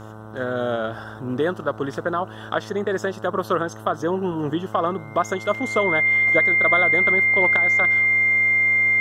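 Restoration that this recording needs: de-hum 108.6 Hz, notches 14; notch 2100 Hz, Q 30

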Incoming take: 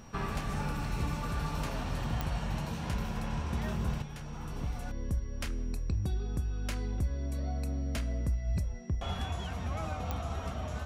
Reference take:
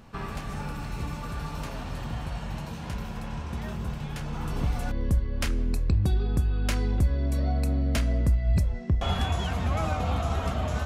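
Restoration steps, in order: de-click; notch 5700 Hz, Q 30; gain 0 dB, from 4.02 s +8.5 dB

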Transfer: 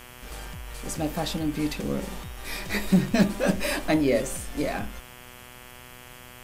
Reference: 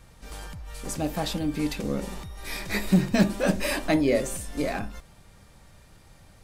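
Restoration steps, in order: de-hum 123.7 Hz, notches 27; denoiser 7 dB, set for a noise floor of -46 dBFS

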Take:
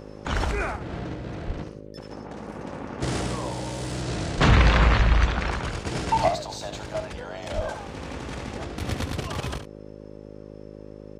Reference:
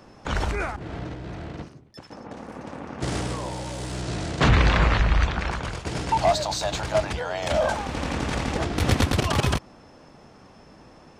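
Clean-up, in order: de-hum 52 Hz, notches 11; de-plosive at 1.46/4.36/7.55; inverse comb 71 ms -10 dB; gain 0 dB, from 6.28 s +8.5 dB

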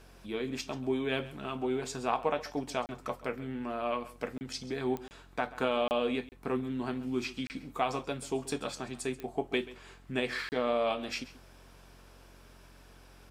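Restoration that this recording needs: de-click; de-hum 45.2 Hz, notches 7; interpolate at 2.86/4.38/5.08/5.88/6.29/7.47/10.49, 29 ms; inverse comb 0.134 s -17.5 dB

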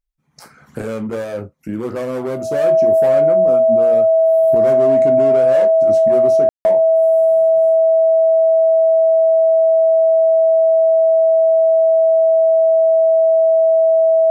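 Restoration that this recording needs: notch 650 Hz, Q 30; room tone fill 6.49–6.65

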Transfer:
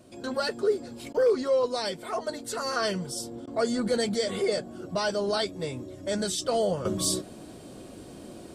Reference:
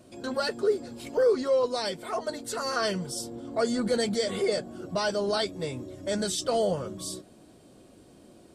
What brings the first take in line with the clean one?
clip repair -16 dBFS; interpolate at 1.13/3.46, 12 ms; gain correction -9.5 dB, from 6.85

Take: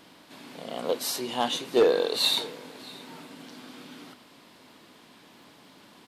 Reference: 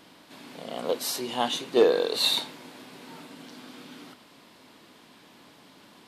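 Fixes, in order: clip repair -13.5 dBFS; de-click; inverse comb 0.632 s -22 dB

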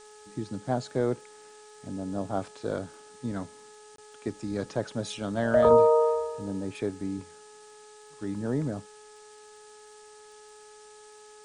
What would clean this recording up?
de-click; de-hum 423.7 Hz, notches 4; interpolate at 3.96, 23 ms; noise print and reduce 23 dB

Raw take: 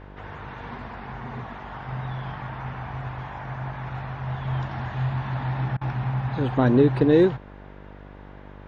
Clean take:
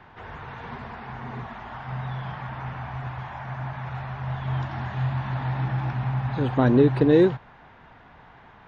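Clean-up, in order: de-hum 49.2 Hz, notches 13; interpolate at 5.77, 41 ms

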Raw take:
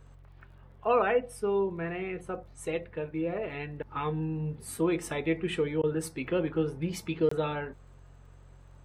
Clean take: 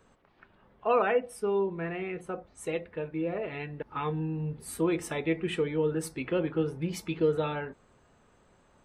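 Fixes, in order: de-click; de-hum 45.4 Hz, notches 3; interpolate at 7.29, 24 ms; interpolate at 5.82, 13 ms

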